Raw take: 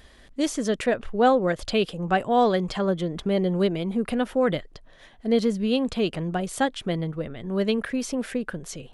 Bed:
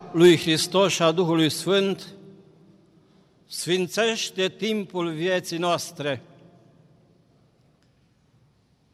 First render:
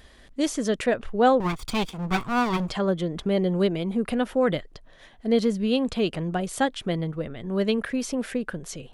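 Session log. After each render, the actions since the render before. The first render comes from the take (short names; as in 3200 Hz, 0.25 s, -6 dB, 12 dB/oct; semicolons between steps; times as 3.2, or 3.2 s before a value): 1.4–2.7 minimum comb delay 0.86 ms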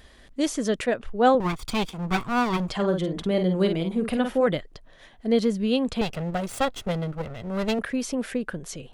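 0.85–1.35 three-band expander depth 40%; 2.74–4.47 doubler 49 ms -6.5 dB; 6.01–7.79 minimum comb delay 1.5 ms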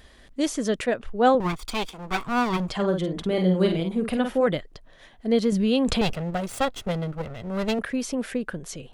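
1.59–2.27 bell 130 Hz -14 dB 1.3 oct; 3.26–3.8 doubler 38 ms -5 dB; 5.52–6.13 fast leveller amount 70%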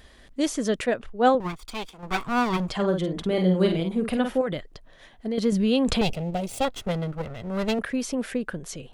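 1.06–2.03 upward expander, over -27 dBFS; 4.41–5.38 compressor, threshold -24 dBFS; 6.03–6.65 band shelf 1400 Hz -10 dB 1.1 oct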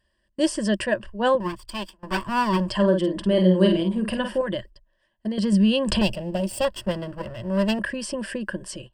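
gate -40 dBFS, range -22 dB; ripple EQ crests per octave 1.3, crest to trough 14 dB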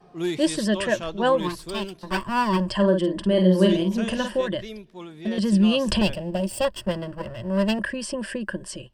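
add bed -12.5 dB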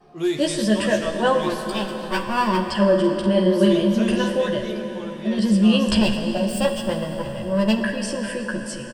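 doubler 14 ms -3 dB; plate-style reverb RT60 4.7 s, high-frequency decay 0.75×, DRR 5 dB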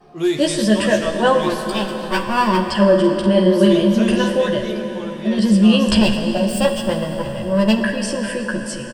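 gain +4 dB; limiter -3 dBFS, peak gain reduction 1.5 dB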